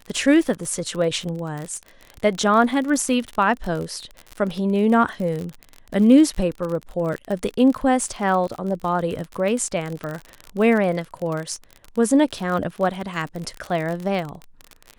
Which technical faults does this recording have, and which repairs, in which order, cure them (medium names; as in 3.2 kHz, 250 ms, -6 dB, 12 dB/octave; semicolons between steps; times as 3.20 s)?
crackle 45 per s -26 dBFS
10.04 s: pop -19 dBFS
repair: de-click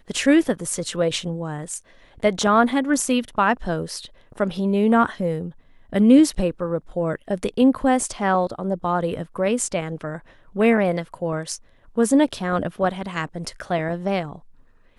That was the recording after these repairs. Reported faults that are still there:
nothing left